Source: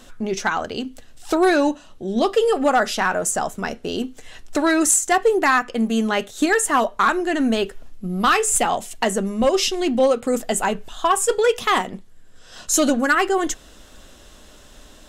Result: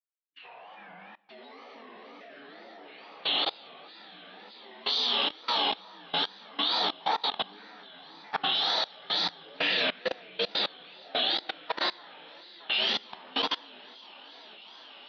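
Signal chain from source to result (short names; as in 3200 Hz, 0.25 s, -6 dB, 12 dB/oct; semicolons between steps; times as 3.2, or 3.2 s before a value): inharmonic rescaling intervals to 76%; AGC gain up to 11 dB; differentiator; echo with dull and thin repeats by turns 0.31 s, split 2200 Hz, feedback 85%, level -5 dB; gate -37 dBFS, range -56 dB; formant-preserving pitch shift -4 st; plate-style reverb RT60 1.5 s, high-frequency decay 1×, DRR -7 dB; wow and flutter 140 cents; level quantiser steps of 23 dB; air absorption 100 m; gain -2 dB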